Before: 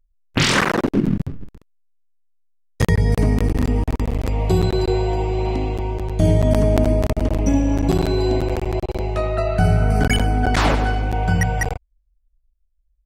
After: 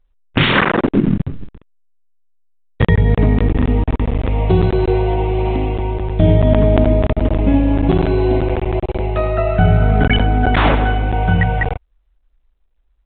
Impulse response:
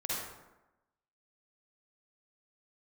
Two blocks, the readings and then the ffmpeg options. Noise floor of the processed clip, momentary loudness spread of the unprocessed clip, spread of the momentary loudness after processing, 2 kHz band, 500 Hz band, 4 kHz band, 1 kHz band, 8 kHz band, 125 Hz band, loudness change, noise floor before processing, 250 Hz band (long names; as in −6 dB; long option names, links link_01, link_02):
−60 dBFS, 8 LU, 8 LU, +4.0 dB, +4.0 dB, +2.0 dB, +4.0 dB, below −40 dB, +4.0 dB, +4.0 dB, −65 dBFS, +4.0 dB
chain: -af "volume=4dB" -ar 8000 -c:a pcm_mulaw